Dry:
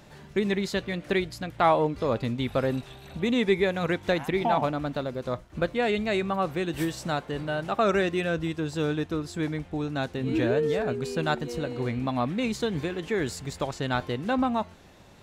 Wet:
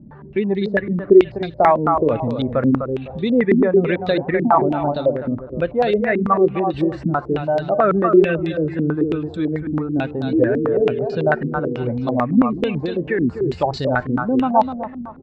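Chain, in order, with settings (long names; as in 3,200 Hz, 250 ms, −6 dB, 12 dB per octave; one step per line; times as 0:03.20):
expanding power law on the bin magnitudes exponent 1.5
repeating echo 252 ms, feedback 28%, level −8 dB
low-pass on a step sequencer 9.1 Hz 250–4,100 Hz
level +5.5 dB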